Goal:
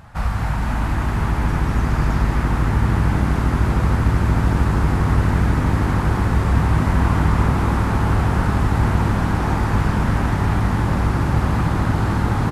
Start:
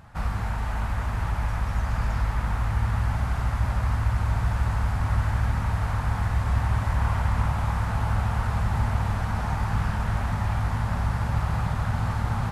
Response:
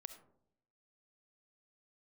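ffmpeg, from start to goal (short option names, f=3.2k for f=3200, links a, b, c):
-filter_complex "[0:a]asplit=9[a][b][c][d][e][f][g][h][i];[b]adelay=227,afreqshift=91,volume=-8dB[j];[c]adelay=454,afreqshift=182,volume=-12.4dB[k];[d]adelay=681,afreqshift=273,volume=-16.9dB[l];[e]adelay=908,afreqshift=364,volume=-21.3dB[m];[f]adelay=1135,afreqshift=455,volume=-25.7dB[n];[g]adelay=1362,afreqshift=546,volume=-30.2dB[o];[h]adelay=1589,afreqshift=637,volume=-34.6dB[p];[i]adelay=1816,afreqshift=728,volume=-39.1dB[q];[a][j][k][l][m][n][o][p][q]amix=inputs=9:normalize=0,volume=6dB"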